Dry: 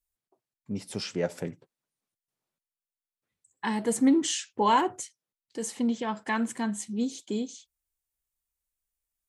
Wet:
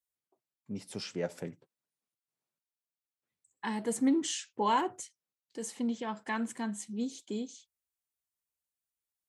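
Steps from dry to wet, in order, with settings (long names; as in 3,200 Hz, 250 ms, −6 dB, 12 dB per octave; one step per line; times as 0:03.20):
high-pass filter 93 Hz
level −5.5 dB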